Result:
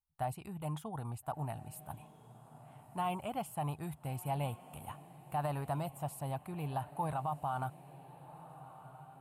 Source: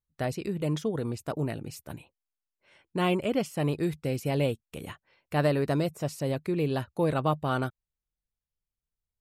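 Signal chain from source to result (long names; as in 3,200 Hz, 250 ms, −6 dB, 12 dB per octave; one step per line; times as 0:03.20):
drawn EQ curve 120 Hz 0 dB, 350 Hz −14 dB, 510 Hz −14 dB, 790 Hz +11 dB, 1,900 Hz −9 dB, 2,900 Hz −5 dB, 5,700 Hz −16 dB, 9,200 Hz +4 dB
brickwall limiter −20.5 dBFS, peak gain reduction 10.5 dB
on a send: feedback delay with all-pass diffusion 1,382 ms, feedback 42%, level −15.5 dB
on the sum: level −5.5 dB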